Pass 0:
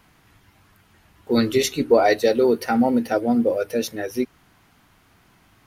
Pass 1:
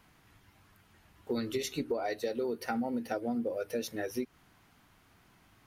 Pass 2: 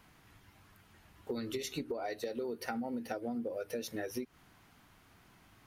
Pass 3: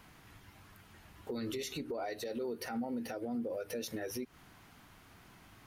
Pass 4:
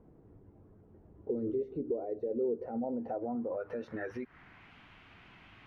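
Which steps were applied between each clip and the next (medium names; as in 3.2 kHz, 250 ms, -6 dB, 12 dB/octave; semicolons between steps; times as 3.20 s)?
compression 12:1, threshold -23 dBFS, peak gain reduction 13.5 dB; trim -6.5 dB
compression 4:1, threshold -36 dBFS, peak gain reduction 7.5 dB; trim +1 dB
peak limiter -34.5 dBFS, peak gain reduction 11 dB; trim +4 dB
low-pass sweep 440 Hz -> 2.7 kHz, 2.41–4.76 s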